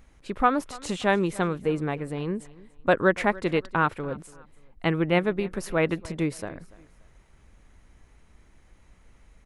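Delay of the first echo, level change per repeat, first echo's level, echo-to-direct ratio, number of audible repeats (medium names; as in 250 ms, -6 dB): 288 ms, -10.0 dB, -21.0 dB, -20.5 dB, 2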